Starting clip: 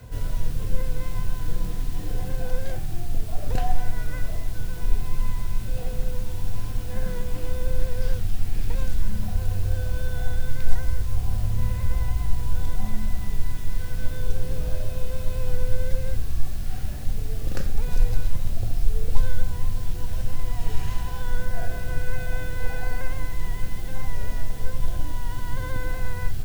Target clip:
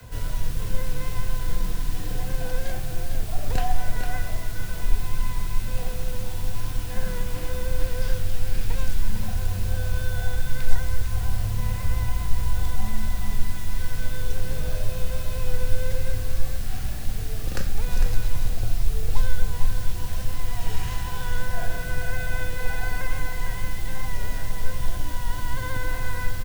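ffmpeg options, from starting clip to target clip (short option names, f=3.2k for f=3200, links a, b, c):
-filter_complex "[0:a]acrossover=split=150|470|740[a][b][c][d];[d]acontrast=28[e];[a][b][c][e]amix=inputs=4:normalize=0,aecho=1:1:453:0.422,volume=-1dB"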